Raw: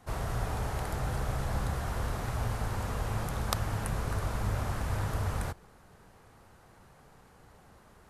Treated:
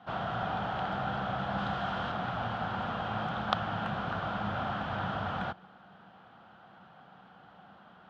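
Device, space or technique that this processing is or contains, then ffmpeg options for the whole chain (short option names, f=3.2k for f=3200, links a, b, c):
kitchen radio: -filter_complex "[0:a]asettb=1/sr,asplit=3[a][b][c];[a]atrim=end=1.584[d];[b]atrim=start=1.58:end=2.12,asetpts=PTS-STARTPTS,afade=t=in:d=0.004:c=qsin,afade=t=out:st=0.536:d=0.004:c=qsin,equalizer=f=6.6k:w=0.44:g=4.5[e];[c]atrim=start=2.116[f];[d][e]acrossfade=d=0.004:c1=hsin:c2=qsin[g];[g][f]acrossfade=d=0.004:c1=qsin:c2=hsin,highpass=160,equalizer=f=190:t=q:w=4:g=9,equalizer=f=420:t=q:w=4:g=-7,equalizer=f=740:t=q:w=4:g=9,equalizer=f=1.4k:t=q:w=4:g=9,equalizer=f=2.1k:t=q:w=4:g=-5,equalizer=f=3.2k:t=q:w=4:g=10,lowpass=f=3.7k:w=0.5412,lowpass=f=3.7k:w=1.3066"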